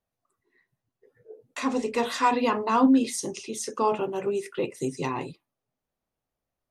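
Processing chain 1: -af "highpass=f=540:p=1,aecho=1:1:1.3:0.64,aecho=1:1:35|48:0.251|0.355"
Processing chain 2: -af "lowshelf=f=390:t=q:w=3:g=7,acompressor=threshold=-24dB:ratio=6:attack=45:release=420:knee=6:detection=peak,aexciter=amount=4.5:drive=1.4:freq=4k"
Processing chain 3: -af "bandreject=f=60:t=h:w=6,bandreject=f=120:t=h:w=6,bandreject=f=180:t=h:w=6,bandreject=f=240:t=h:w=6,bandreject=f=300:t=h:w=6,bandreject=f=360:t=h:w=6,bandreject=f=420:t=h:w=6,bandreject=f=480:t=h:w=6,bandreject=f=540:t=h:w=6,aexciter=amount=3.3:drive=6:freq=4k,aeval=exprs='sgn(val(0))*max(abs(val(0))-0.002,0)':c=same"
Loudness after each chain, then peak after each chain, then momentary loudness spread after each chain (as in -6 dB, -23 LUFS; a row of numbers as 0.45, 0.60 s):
-29.0, -27.0, -25.0 LUFS; -9.0, -11.5, -8.0 dBFS; 13, 6, 12 LU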